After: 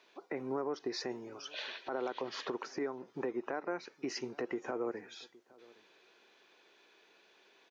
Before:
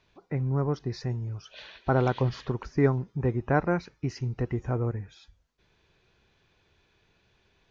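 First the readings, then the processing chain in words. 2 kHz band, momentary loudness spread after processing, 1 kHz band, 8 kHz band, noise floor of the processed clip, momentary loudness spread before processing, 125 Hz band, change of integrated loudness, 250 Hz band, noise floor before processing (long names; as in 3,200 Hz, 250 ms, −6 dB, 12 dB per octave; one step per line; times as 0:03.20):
−7.0 dB, 7 LU, −9.0 dB, can't be measured, −67 dBFS, 11 LU, −30.0 dB, −10.5 dB, −10.5 dB, −69 dBFS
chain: high-pass filter 300 Hz 24 dB per octave
downward compressor 12 to 1, threshold −34 dBFS, peak gain reduction 16 dB
brickwall limiter −31 dBFS, peak gain reduction 10.5 dB
slap from a distant wall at 140 metres, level −23 dB
level +4 dB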